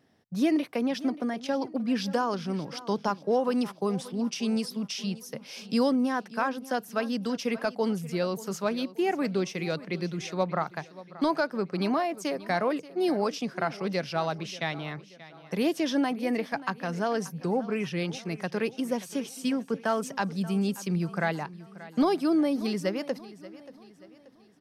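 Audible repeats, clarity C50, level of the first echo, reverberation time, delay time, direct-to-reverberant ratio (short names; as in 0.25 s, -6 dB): 3, none, -17.5 dB, none, 0.582 s, none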